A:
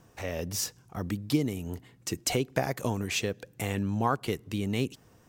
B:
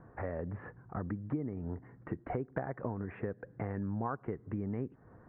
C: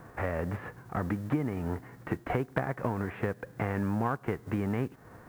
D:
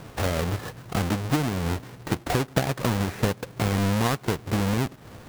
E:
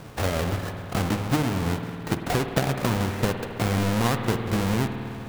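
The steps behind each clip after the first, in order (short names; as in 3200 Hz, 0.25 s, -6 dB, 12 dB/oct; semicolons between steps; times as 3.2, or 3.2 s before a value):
steep low-pass 1800 Hz 48 dB/oct; compressor 3:1, threshold -39 dBFS, peak gain reduction 14 dB; gain +3 dB
spectral whitening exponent 0.6; gain +6 dB
half-waves squared off; gain +2 dB
spring tank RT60 3 s, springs 52 ms, chirp 45 ms, DRR 5.5 dB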